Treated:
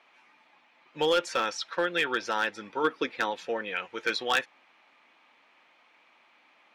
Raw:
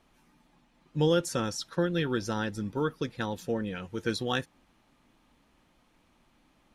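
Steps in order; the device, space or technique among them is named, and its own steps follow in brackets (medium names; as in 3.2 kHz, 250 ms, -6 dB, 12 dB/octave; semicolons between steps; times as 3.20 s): megaphone (band-pass 670–3700 Hz; peaking EQ 2.3 kHz +7 dB 0.45 oct; hard clipper -25 dBFS, distortion -16 dB); 2.83–3.30 s: peaking EQ 290 Hz +11.5 dB -> +5 dB 1 oct; trim +7.5 dB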